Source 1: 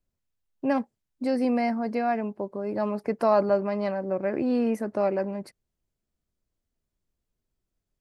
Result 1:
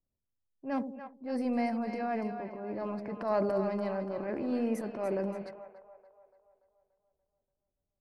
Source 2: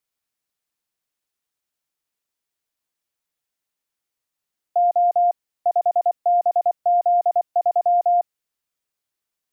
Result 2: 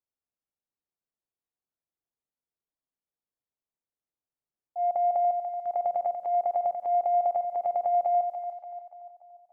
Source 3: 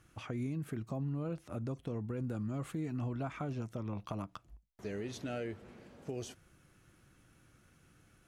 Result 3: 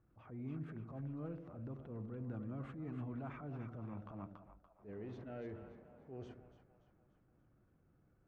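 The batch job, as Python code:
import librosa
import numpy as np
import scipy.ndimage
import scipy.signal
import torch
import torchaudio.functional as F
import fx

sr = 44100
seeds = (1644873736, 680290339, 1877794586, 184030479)

y = fx.transient(x, sr, attack_db=-10, sustain_db=6)
y = fx.echo_split(y, sr, split_hz=600.0, low_ms=87, high_ms=289, feedback_pct=52, wet_db=-8)
y = fx.env_lowpass(y, sr, base_hz=870.0, full_db=-21.5)
y = y * librosa.db_to_amplitude(-7.0)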